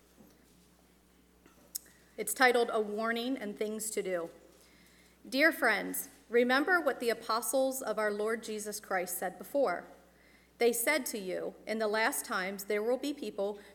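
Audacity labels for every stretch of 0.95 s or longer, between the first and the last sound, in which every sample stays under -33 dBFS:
4.250000	5.330000	silence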